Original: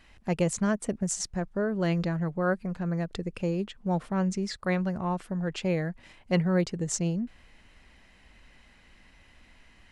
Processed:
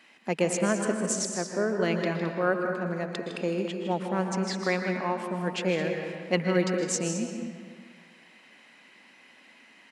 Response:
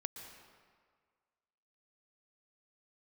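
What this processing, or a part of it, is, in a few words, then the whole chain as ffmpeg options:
stadium PA: -filter_complex "[0:a]highpass=frequency=210:width=0.5412,highpass=frequency=210:width=1.3066,equalizer=frequency=2400:width_type=o:width=0.67:gain=3.5,aecho=1:1:157.4|215.7:0.316|0.251[link_01];[1:a]atrim=start_sample=2205[link_02];[link_01][link_02]afir=irnorm=-1:irlink=0,volume=4.5dB"

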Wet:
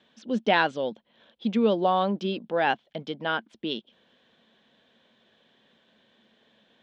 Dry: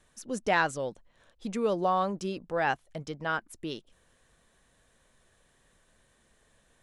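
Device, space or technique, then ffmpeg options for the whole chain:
kitchen radio: -af "highpass=220,equalizer=frequency=220:width_type=q:width=4:gain=10,equalizer=frequency=1200:width_type=q:width=4:gain=-6,equalizer=frequency=1900:width_type=q:width=4:gain=-3,equalizer=frequency=3300:width_type=q:width=4:gain=9,lowpass=frequency=4200:width=0.5412,lowpass=frequency=4200:width=1.3066,volume=4.5dB"

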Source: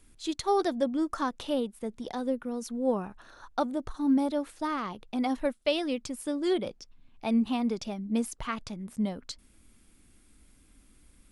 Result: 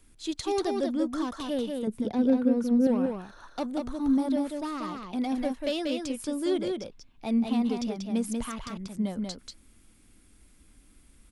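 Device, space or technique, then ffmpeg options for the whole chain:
one-band saturation: -filter_complex "[0:a]asettb=1/sr,asplit=3[link_01][link_02][link_03];[link_01]atrim=end=1.874[link_04];[link_02]atrim=start=1.87:end=2.87,asetpts=PTS-STARTPTS,afade=type=in:duration=0.004:curve=qsin,afade=type=out:start_time=0.996:duration=0.004:curve=qsin,equalizer=frequency=125:width_type=o:width=1:gain=9,equalizer=frequency=250:width_type=o:width=1:gain=7,equalizer=frequency=500:width_type=o:width=1:gain=4,equalizer=frequency=8000:width_type=o:width=1:gain=-11[link_05];[link_03]atrim=start=2.866[link_06];[link_04][link_05]acrossfade=duration=0.004:curve1=hsin:curve2=qsin[link_07];[link_07][link_06]acrossfade=duration=0.004:curve1=qsin:curve2=hsin,acrossover=split=550|3400[link_08][link_09][link_10];[link_09]asoftclip=type=tanh:threshold=-36dB[link_11];[link_08][link_11][link_10]amix=inputs=3:normalize=0,aecho=1:1:188:0.631"

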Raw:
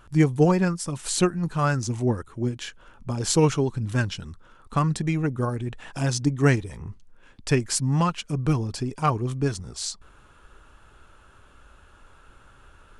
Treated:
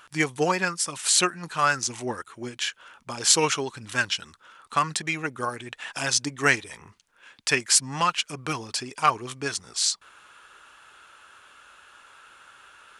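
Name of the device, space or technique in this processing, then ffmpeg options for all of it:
filter by subtraction: -filter_complex "[0:a]asplit=2[link_01][link_02];[link_02]lowpass=2200,volume=-1[link_03];[link_01][link_03]amix=inputs=2:normalize=0,volume=6.5dB"

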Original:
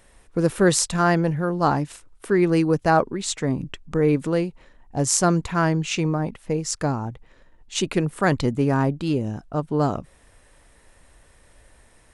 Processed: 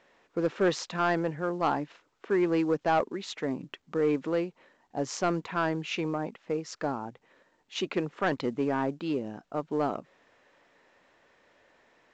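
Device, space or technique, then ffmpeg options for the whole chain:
telephone: -filter_complex "[0:a]asettb=1/sr,asplit=3[link_01][link_02][link_03];[link_01]atrim=end=1.794[link_04];[link_02]atrim=start=1.79:end=2.43,asetpts=PTS-STARTPTS,afade=type=in:duration=0.004:curve=qsin,afade=type=out:start_time=0.636:duration=0.004:curve=qsin,highshelf=frequency=6300:gain=-11[link_05];[link_03]atrim=start=2.426[link_06];[link_04][link_05]acrossfade=duration=0.004:curve1=hsin:curve2=qsin[link_07];[link_07][link_06]acrossfade=duration=0.004:curve1=qsin:curve2=hsin,highpass=270,lowpass=3500,asoftclip=type=tanh:threshold=-12.5dB,volume=-4dB" -ar 16000 -c:a pcm_mulaw

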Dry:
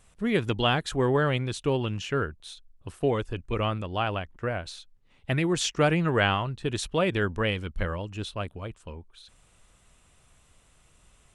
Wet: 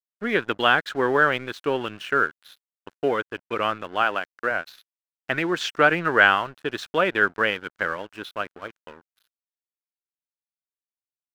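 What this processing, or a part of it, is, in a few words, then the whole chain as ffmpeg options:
pocket radio on a weak battery: -filter_complex "[0:a]asettb=1/sr,asplit=3[link_01][link_02][link_03];[link_01]atrim=end=4.024[link_04];[link_02]atrim=start=4.02:end=4.51,asetpts=PTS-STARTPTS,afade=type=in:duration=0.004:curve=qsin,afade=type=out:start_time=0.486:duration=0.004:curve=qsin,highpass=150[link_05];[link_03]atrim=start=4.506[link_06];[link_04][link_05]acrossfade=duration=0.004:curve1=hsin:curve2=qsin[link_07];[link_07][link_06]acrossfade=duration=0.004:curve1=qsin:curve2=hsin,highpass=290,lowpass=4000,aeval=exprs='sgn(val(0))*max(abs(val(0))-0.00398,0)':channel_layout=same,equalizer=frequency=1500:width_type=o:width=0.59:gain=10,volume=3.5dB"

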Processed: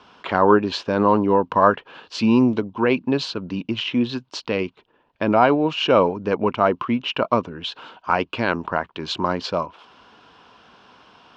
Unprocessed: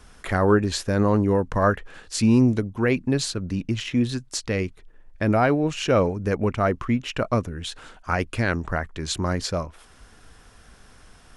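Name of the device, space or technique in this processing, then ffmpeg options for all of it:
kitchen radio: -af "highpass=210,equalizer=frequency=970:width_type=q:width=4:gain=9,equalizer=frequency=1900:width_type=q:width=4:gain=-8,equalizer=frequency=2900:width_type=q:width=4:gain=6,lowpass=frequency=4400:width=0.5412,lowpass=frequency=4400:width=1.3066,volume=3.5dB"

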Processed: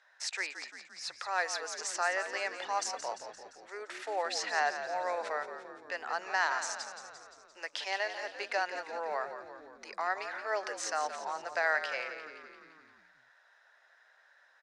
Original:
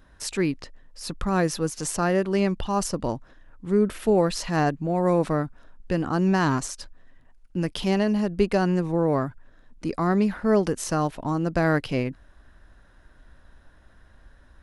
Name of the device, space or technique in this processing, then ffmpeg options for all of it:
phone speaker on a table: -filter_complex "[0:a]highpass=frequency=720:width=0.5412,highpass=frequency=720:width=1.3066,highpass=frequency=340:width=0.5412,highpass=frequency=340:width=1.3066,equalizer=frequency=1100:width_type=q:width=4:gain=-7,equalizer=frequency=1900:width_type=q:width=4:gain=5,equalizer=frequency=3100:width_type=q:width=4:gain=-5,lowpass=frequency=7000:width=0.5412,lowpass=frequency=7000:width=1.3066,asplit=8[link_01][link_02][link_03][link_04][link_05][link_06][link_07][link_08];[link_02]adelay=173,afreqshift=-53,volume=-10dB[link_09];[link_03]adelay=346,afreqshift=-106,volume=-14.6dB[link_10];[link_04]adelay=519,afreqshift=-159,volume=-19.2dB[link_11];[link_05]adelay=692,afreqshift=-212,volume=-23.7dB[link_12];[link_06]adelay=865,afreqshift=-265,volume=-28.3dB[link_13];[link_07]adelay=1038,afreqshift=-318,volume=-32.9dB[link_14];[link_08]adelay=1211,afreqshift=-371,volume=-37.5dB[link_15];[link_01][link_09][link_10][link_11][link_12][link_13][link_14][link_15]amix=inputs=8:normalize=0,volume=-2dB"

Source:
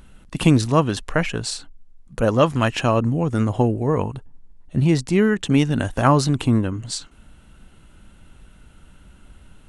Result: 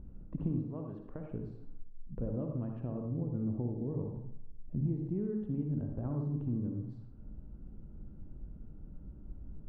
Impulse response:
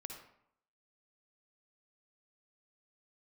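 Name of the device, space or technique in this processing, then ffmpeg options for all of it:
television next door: -filter_complex "[0:a]asettb=1/sr,asplit=3[link_01][link_02][link_03];[link_01]atrim=end=0.624[link_04];[link_02]atrim=start=0.62:end=1.32,asetpts=PTS-STARTPTS,afade=type=in:duration=0.004:curve=qsin,afade=type=out:start_time=0.696:duration=0.004:curve=qsin,lowshelf=frequency=420:gain=-12[link_05];[link_03]atrim=start=1.316[link_06];[link_04][link_05]acrossfade=duration=0.004:curve1=hsin:curve2=qsin[link_07];[link_07][link_06]acrossfade=duration=0.004:curve1=qsin:curve2=hsin,acompressor=threshold=-36dB:ratio=3,lowpass=360[link_08];[1:a]atrim=start_sample=2205[link_09];[link_08][link_09]afir=irnorm=-1:irlink=0,volume=4dB"

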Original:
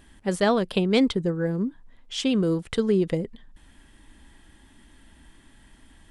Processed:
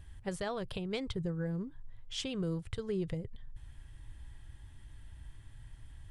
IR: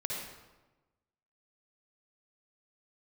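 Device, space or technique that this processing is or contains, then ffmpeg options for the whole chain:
car stereo with a boomy subwoofer: -af "lowshelf=frequency=160:width_type=q:width=3:gain=11.5,alimiter=limit=-18.5dB:level=0:latency=1:release=319,volume=-8dB"

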